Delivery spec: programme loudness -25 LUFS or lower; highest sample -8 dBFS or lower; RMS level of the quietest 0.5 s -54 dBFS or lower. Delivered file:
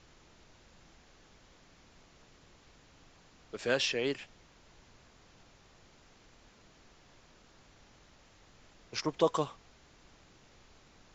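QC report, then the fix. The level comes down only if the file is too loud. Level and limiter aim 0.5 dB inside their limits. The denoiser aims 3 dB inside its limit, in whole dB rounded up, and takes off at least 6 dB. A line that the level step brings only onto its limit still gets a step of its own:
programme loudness -33.0 LUFS: OK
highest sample -14.5 dBFS: OK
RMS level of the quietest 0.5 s -61 dBFS: OK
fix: none

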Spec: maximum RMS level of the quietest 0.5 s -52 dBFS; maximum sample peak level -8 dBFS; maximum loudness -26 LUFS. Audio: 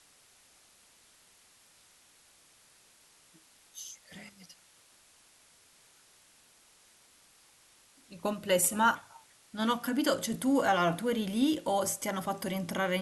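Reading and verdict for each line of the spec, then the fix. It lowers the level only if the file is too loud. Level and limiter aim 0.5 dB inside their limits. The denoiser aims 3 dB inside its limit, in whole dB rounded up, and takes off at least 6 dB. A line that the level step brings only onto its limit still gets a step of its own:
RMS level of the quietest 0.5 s -62 dBFS: OK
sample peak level -14.0 dBFS: OK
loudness -30.0 LUFS: OK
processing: none

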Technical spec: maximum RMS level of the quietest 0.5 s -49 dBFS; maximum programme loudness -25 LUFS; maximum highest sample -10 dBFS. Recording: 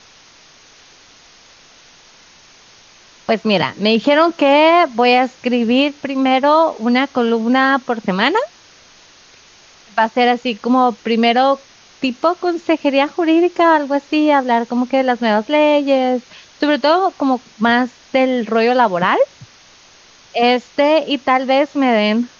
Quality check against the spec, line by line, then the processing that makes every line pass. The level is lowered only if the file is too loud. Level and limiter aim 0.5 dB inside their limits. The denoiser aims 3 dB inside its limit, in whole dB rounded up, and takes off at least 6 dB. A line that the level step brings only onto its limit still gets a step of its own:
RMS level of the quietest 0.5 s -46 dBFS: fail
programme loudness -15.0 LUFS: fail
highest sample -3.0 dBFS: fail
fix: gain -10.5 dB

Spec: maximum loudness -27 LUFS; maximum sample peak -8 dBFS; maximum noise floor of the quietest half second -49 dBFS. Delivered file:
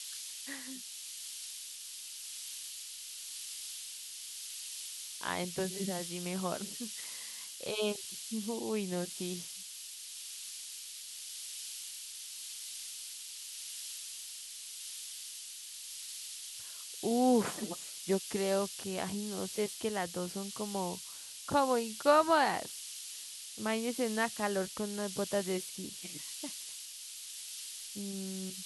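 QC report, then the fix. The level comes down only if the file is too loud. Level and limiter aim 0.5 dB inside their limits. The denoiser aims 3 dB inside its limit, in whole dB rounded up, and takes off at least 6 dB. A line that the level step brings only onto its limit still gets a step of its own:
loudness -36.5 LUFS: OK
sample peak -14.0 dBFS: OK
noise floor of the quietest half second -47 dBFS: fail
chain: denoiser 6 dB, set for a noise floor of -47 dBFS

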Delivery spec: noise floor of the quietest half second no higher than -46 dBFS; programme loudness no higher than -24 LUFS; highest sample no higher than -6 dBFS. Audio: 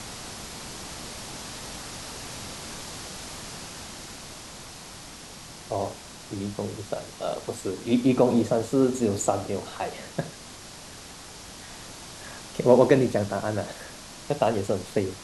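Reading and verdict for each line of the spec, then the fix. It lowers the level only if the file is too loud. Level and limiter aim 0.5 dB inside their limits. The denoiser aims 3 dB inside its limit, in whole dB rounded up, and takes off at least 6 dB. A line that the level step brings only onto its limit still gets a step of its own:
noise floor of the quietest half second -43 dBFS: fail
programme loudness -27.5 LUFS: OK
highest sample -4.5 dBFS: fail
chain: denoiser 6 dB, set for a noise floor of -43 dBFS; limiter -6.5 dBFS

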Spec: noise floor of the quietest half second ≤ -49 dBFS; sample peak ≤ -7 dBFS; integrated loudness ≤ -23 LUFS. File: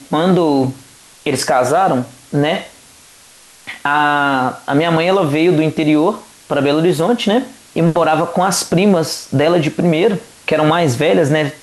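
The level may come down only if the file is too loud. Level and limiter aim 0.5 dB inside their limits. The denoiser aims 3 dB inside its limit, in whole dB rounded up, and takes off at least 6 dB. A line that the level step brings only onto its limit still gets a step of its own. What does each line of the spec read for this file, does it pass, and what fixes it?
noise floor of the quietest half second -44 dBFS: fail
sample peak -3.5 dBFS: fail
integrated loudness -15.0 LUFS: fail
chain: gain -8.5 dB

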